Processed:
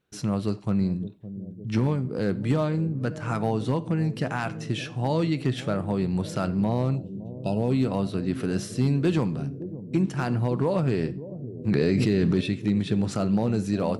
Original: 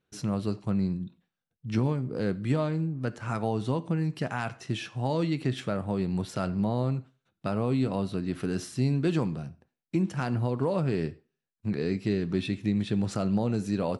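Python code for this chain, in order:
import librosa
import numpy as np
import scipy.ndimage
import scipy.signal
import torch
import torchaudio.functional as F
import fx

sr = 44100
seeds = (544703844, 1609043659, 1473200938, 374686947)

y = fx.spec_box(x, sr, start_s=6.96, length_s=0.74, low_hz=1000.0, high_hz=2500.0, gain_db=-24)
y = np.clip(10.0 ** (18.0 / 20.0) * y, -1.0, 1.0) / 10.0 ** (18.0 / 20.0)
y = fx.echo_bbd(y, sr, ms=563, stages=2048, feedback_pct=71, wet_db=-13.5)
y = fx.env_flatten(y, sr, amount_pct=100, at=(11.68, 12.41))
y = y * 10.0 ** (3.0 / 20.0)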